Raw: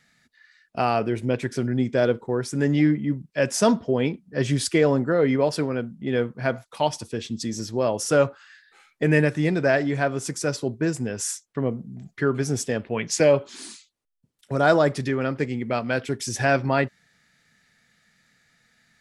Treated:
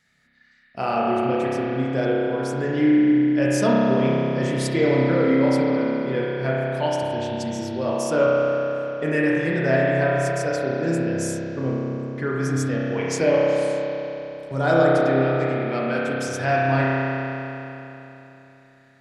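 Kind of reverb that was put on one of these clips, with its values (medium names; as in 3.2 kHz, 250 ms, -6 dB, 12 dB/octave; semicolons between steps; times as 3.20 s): spring tank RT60 3.4 s, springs 30 ms, chirp 40 ms, DRR -6 dB; trim -5 dB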